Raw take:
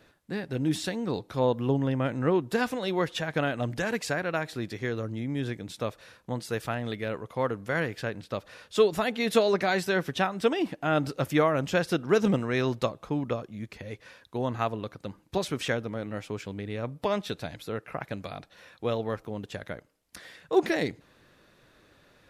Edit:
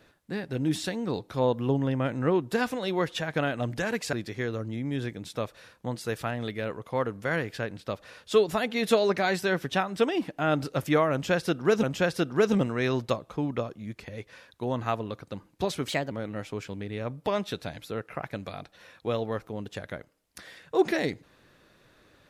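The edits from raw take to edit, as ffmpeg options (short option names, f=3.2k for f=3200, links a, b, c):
-filter_complex "[0:a]asplit=5[a][b][c][d][e];[a]atrim=end=4.132[f];[b]atrim=start=4.568:end=12.272[g];[c]atrim=start=11.558:end=15.614[h];[d]atrim=start=15.61:end=15.89,asetpts=PTS-STARTPTS,asetrate=52920,aresample=44100[i];[e]atrim=start=15.886[j];[f][g]acrossfade=d=0.004:c1=hsin:c2=hsin[k];[k][h]acrossfade=d=0.004:c1=hsin:c2=hsin[l];[l][i]acrossfade=d=0.004:c1=hsin:c2=hsin[m];[m][j]acrossfade=d=0.004:c1=hsin:c2=hsin"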